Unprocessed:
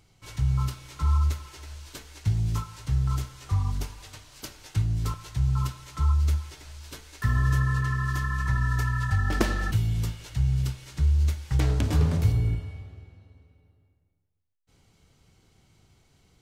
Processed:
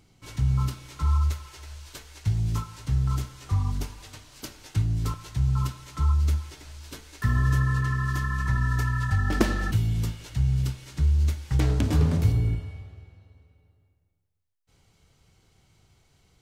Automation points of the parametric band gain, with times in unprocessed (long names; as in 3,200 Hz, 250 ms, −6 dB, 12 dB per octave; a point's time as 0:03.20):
parametric band 250 Hz 1.1 octaves
0:00.75 +7 dB
0:01.34 −5 dB
0:02.10 −5 dB
0:02.63 +4.5 dB
0:12.38 +4.5 dB
0:12.96 −4 dB